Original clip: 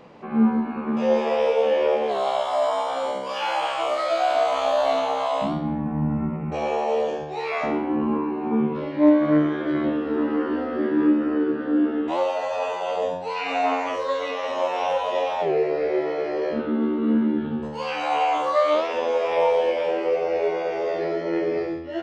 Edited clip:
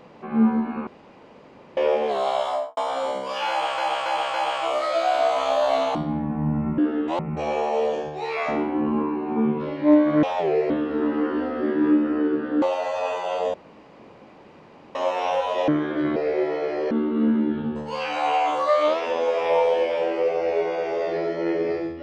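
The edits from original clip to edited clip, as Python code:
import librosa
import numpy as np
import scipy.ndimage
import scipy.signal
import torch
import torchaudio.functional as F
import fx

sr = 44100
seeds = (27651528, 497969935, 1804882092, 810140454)

y = fx.studio_fade_out(x, sr, start_s=2.47, length_s=0.3)
y = fx.edit(y, sr, fx.room_tone_fill(start_s=0.87, length_s=0.9),
    fx.repeat(start_s=3.5, length_s=0.28, count=4),
    fx.cut(start_s=5.11, length_s=0.4),
    fx.swap(start_s=9.38, length_s=0.48, other_s=15.25, other_length_s=0.47),
    fx.move(start_s=11.78, length_s=0.41, to_s=6.34),
    fx.room_tone_fill(start_s=13.11, length_s=1.41),
    fx.cut(start_s=16.47, length_s=0.31), tone=tone)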